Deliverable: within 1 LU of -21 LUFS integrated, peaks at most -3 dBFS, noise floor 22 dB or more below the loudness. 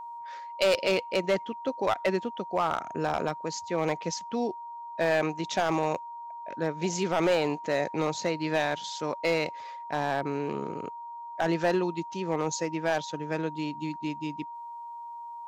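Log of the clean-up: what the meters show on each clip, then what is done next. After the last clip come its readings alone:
clipped 0.6%; flat tops at -18.5 dBFS; steady tone 940 Hz; tone level -38 dBFS; loudness -29.5 LUFS; peak -18.5 dBFS; loudness target -21.0 LUFS
-> clip repair -18.5 dBFS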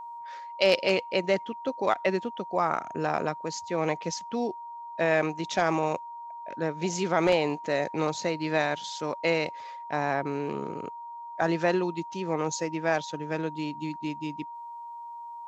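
clipped 0.0%; steady tone 940 Hz; tone level -38 dBFS
-> notch 940 Hz, Q 30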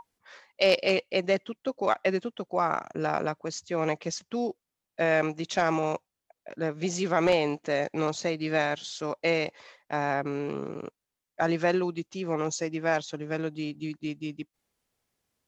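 steady tone none; loudness -29.0 LUFS; peak -9.5 dBFS; loudness target -21.0 LUFS
-> gain +8 dB; limiter -3 dBFS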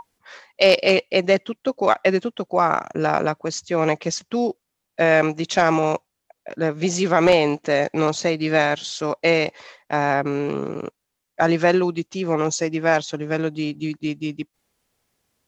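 loudness -21.0 LUFS; peak -3.0 dBFS; noise floor -79 dBFS

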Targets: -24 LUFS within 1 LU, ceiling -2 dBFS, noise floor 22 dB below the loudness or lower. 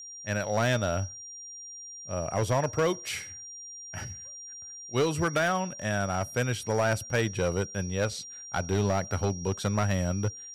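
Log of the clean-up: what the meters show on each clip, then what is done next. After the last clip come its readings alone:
clipped 1.5%; flat tops at -20.0 dBFS; steady tone 5700 Hz; tone level -41 dBFS; loudness -29.5 LUFS; peak -20.0 dBFS; loudness target -24.0 LUFS
-> clip repair -20 dBFS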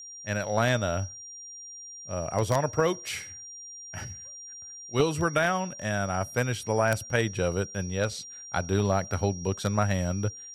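clipped 0.0%; steady tone 5700 Hz; tone level -41 dBFS
-> notch 5700 Hz, Q 30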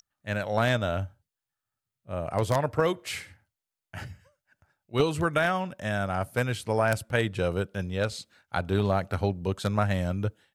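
steady tone none; loudness -28.5 LUFS; peak -11.0 dBFS; loudness target -24.0 LUFS
-> gain +4.5 dB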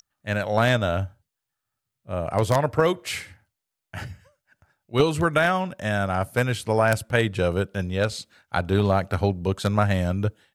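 loudness -24.0 LUFS; peak -6.5 dBFS; noise floor -84 dBFS

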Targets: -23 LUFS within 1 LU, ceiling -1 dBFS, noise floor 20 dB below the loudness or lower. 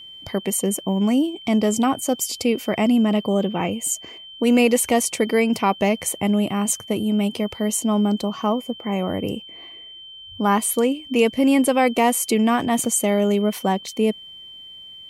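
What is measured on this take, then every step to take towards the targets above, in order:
steady tone 3100 Hz; tone level -38 dBFS; loudness -20.5 LUFS; peak -5.0 dBFS; loudness target -23.0 LUFS
-> notch 3100 Hz, Q 30; gain -2.5 dB

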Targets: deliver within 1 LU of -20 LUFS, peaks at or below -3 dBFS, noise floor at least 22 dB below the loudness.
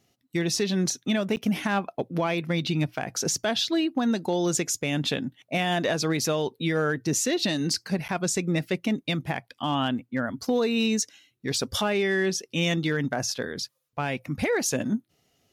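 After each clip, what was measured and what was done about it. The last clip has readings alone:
clipped 0.2%; flat tops at -17.0 dBFS; dropouts 2; longest dropout 9.7 ms; loudness -27.0 LUFS; peak -17.0 dBFS; loudness target -20.0 LUFS
-> clip repair -17 dBFS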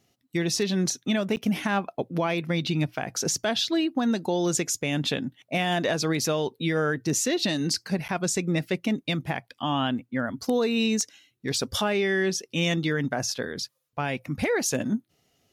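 clipped 0.0%; dropouts 2; longest dropout 9.7 ms
-> interpolate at 1.36/8.08, 9.7 ms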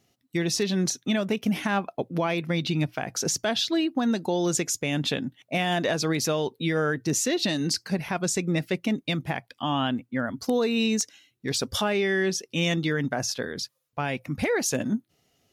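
dropouts 0; loudness -26.5 LUFS; peak -10.5 dBFS; loudness target -20.0 LUFS
-> gain +6.5 dB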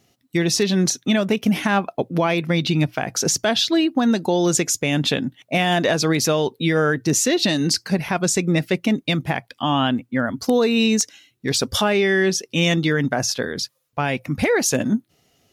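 loudness -20.0 LUFS; peak -4.0 dBFS; noise floor -67 dBFS

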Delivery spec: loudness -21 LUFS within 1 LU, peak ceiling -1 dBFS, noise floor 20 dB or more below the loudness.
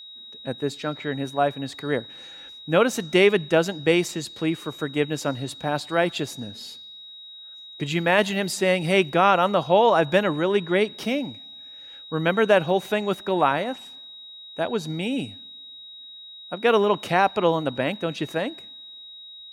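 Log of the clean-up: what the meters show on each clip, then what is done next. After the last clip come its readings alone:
steady tone 3800 Hz; tone level -40 dBFS; loudness -23.0 LUFS; peak -6.0 dBFS; loudness target -21.0 LUFS
-> notch 3800 Hz, Q 30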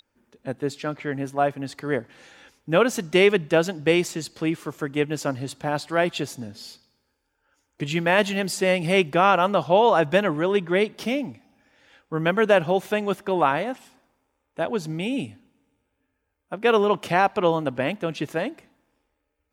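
steady tone none; loudness -23.0 LUFS; peak -6.0 dBFS; loudness target -21.0 LUFS
-> gain +2 dB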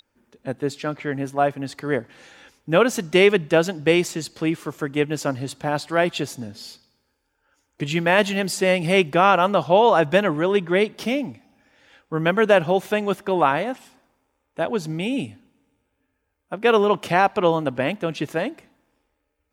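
loudness -21.0 LUFS; peak -4.0 dBFS; noise floor -74 dBFS

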